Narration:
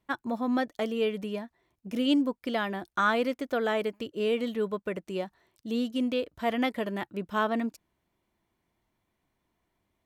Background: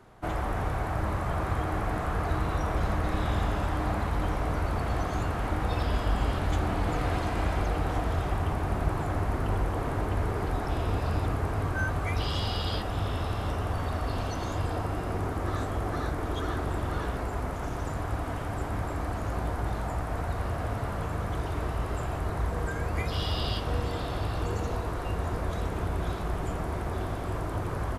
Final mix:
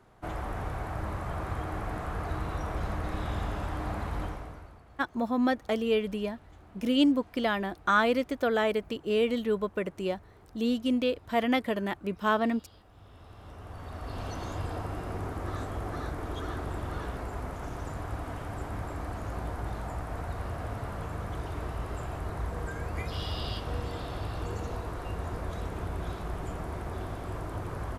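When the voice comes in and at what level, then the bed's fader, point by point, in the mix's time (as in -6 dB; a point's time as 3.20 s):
4.90 s, +1.5 dB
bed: 4.22 s -5 dB
4.84 s -26 dB
12.88 s -26 dB
14.29 s -4.5 dB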